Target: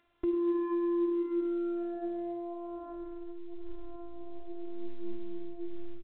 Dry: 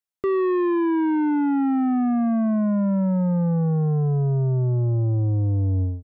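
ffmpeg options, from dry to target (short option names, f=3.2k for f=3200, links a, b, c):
-filter_complex "[0:a]acompressor=mode=upward:threshold=-28dB:ratio=2.5,lowpass=f=1k:p=1,bandreject=f=50:t=h:w=6,bandreject=f=100:t=h:w=6,bandreject=f=150:t=h:w=6,bandreject=f=200:t=h:w=6,bandreject=f=250:t=h:w=6,bandreject=f=300:t=h:w=6,bandreject=f=350:t=h:w=6,bandreject=f=400:t=h:w=6,acompressor=threshold=-26dB:ratio=8,asettb=1/sr,asplit=3[a][b][c];[a]atrim=end=1.954[d];[b]atrim=start=1.95:end=3.96,asetpts=PTS-STARTPTS,afade=t=in:d=0.004:c=qsin,afade=t=out:st=2.006:d=0.004:c=qsin,lowshelf=f=140:g=8.5[e];[c]atrim=start=3.956[f];[d][e]acrossfade=d=0.004:c1=hsin:c2=qsin[g];[g][f]acrossfade=d=0.004:c1=qsin:c2=hsin,flanger=delay=8.1:depth=8.7:regen=81:speed=0.61:shape=sinusoidal,afftfilt=real='hypot(re,im)*cos(PI*b)':imag='0':win_size=512:overlap=0.75,lowshelf=f=300:g=6.5,aecho=1:1:98:0.158" -ar 8000 -c:a pcm_mulaw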